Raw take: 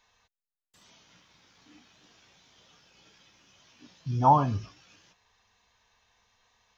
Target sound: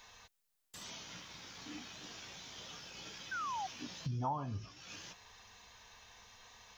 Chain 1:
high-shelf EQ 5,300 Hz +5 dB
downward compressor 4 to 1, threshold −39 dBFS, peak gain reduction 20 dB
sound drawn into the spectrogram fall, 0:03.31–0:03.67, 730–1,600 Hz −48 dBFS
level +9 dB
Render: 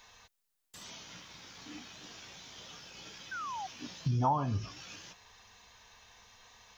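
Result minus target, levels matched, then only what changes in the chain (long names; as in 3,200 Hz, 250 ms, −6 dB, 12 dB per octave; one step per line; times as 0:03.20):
downward compressor: peak gain reduction −8 dB
change: downward compressor 4 to 1, threshold −49.5 dBFS, peak gain reduction 28 dB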